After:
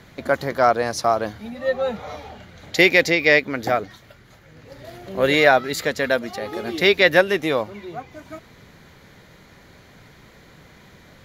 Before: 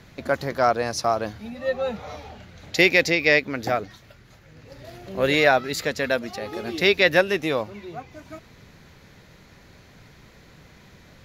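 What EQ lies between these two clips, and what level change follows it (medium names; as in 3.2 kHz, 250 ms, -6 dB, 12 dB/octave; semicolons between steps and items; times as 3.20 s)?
bass shelf 150 Hz -5 dB; peaking EQ 5.3 kHz -4 dB 0.64 oct; band-stop 2.6 kHz, Q 13; +3.5 dB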